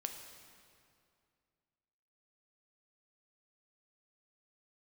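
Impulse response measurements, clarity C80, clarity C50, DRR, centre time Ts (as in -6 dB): 7.5 dB, 6.0 dB, 4.5 dB, 44 ms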